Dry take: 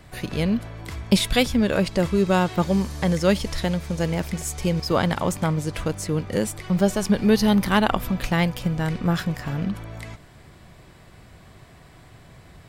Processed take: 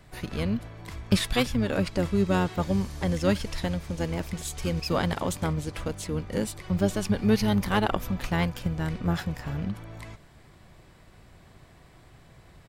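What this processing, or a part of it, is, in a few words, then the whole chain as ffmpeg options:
octave pedal: -filter_complex "[0:a]asplit=2[s0][s1];[s1]asetrate=22050,aresample=44100,atempo=2,volume=0.501[s2];[s0][s2]amix=inputs=2:normalize=0,asettb=1/sr,asplit=3[s3][s4][s5];[s3]atrim=end=4.574[s6];[s4]atrim=start=4.57:end=5.53,asetpts=PTS-STARTPTS,afade=t=in:d=0.004:c=qsin,afade=t=out:st=0.956:d=0.004:c=qsin,equalizer=f=13000:t=o:w=2.9:g=3[s7];[s5]atrim=start=5.526[s8];[s6][s7]acrossfade=d=0.004:c1=hsin:c2=qsin[s9];[s9][s8]acrossfade=d=0.004:c1=qsin:c2=hsin,volume=0.501"

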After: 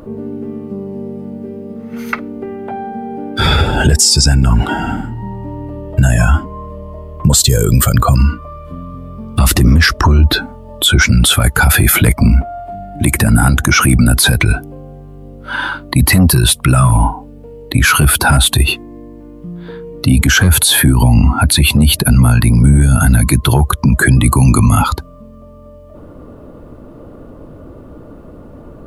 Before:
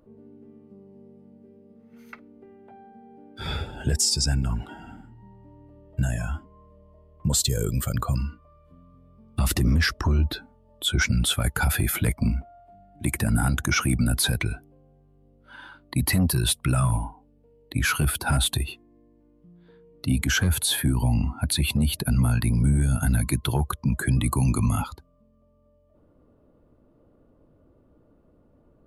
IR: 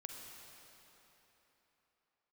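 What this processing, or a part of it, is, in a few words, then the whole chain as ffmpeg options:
mastering chain: -af "equalizer=f=1200:t=o:w=0.63:g=2.5,acompressor=threshold=0.0282:ratio=1.5,alimiter=level_in=18.8:limit=0.891:release=50:level=0:latency=1,volume=0.891"

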